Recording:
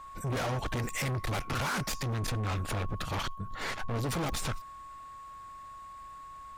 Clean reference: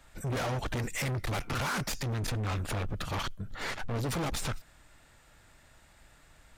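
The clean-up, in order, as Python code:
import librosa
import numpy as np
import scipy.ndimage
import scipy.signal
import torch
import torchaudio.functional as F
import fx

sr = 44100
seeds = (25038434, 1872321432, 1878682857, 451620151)

y = fx.fix_declick_ar(x, sr, threshold=10.0)
y = fx.notch(y, sr, hz=1100.0, q=30.0)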